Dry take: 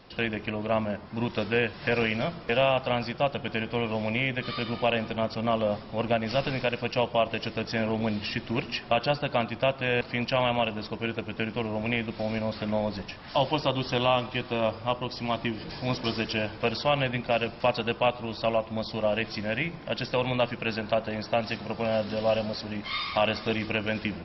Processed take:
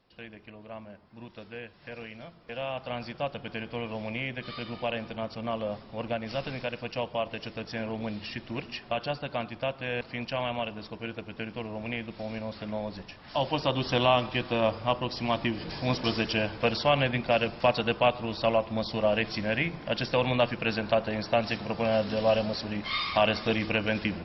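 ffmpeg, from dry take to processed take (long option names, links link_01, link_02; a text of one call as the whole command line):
ffmpeg -i in.wav -af "volume=1dB,afade=type=in:start_time=2.39:duration=0.73:silence=0.316228,afade=type=in:start_time=13.19:duration=0.75:silence=0.446684" out.wav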